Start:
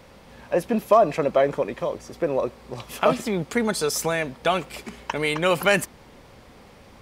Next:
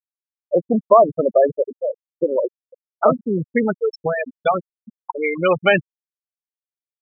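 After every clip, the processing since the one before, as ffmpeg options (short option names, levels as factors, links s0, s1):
-af "afftfilt=real='re*gte(hypot(re,im),0.251)':imag='im*gte(hypot(re,im),0.251)':win_size=1024:overlap=0.75,volume=1.78"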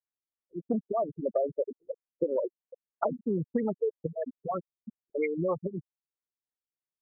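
-af "acompressor=threshold=0.0631:ratio=6,afftfilt=real='re*lt(b*sr/1024,370*pow(2400/370,0.5+0.5*sin(2*PI*3.1*pts/sr)))':imag='im*lt(b*sr/1024,370*pow(2400/370,0.5+0.5*sin(2*PI*3.1*pts/sr)))':win_size=1024:overlap=0.75,volume=0.841"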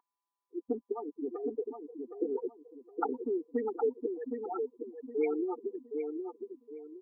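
-filter_complex "[0:a]aeval=exprs='val(0)+0.00126*sin(2*PI*1000*n/s)':c=same,asplit=2[s0][s1];[s1]adelay=765,lowpass=f=880:p=1,volume=0.596,asplit=2[s2][s3];[s3]adelay=765,lowpass=f=880:p=1,volume=0.34,asplit=2[s4][s5];[s5]adelay=765,lowpass=f=880:p=1,volume=0.34,asplit=2[s6][s7];[s7]adelay=765,lowpass=f=880:p=1,volume=0.34[s8];[s0][s2][s4][s6][s8]amix=inputs=5:normalize=0,afftfilt=real='re*eq(mod(floor(b*sr/1024/240),2),1)':imag='im*eq(mod(floor(b*sr/1024/240),2),1)':win_size=1024:overlap=0.75"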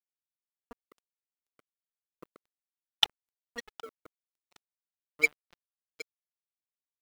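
-filter_complex "[0:a]acrossover=split=240|330|680[s0][s1][s2][s3];[s3]aeval=exprs='0.112*sin(PI/2*1.78*val(0)/0.112)':c=same[s4];[s0][s1][s2][s4]amix=inputs=4:normalize=0,aexciter=amount=13.1:drive=8.1:freq=2100,aeval=exprs='sgn(val(0))*max(abs(val(0))-0.0631,0)':c=same,volume=0.562"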